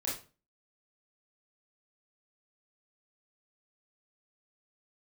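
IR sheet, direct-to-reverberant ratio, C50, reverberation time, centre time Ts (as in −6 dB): −6.0 dB, 5.0 dB, 0.35 s, 38 ms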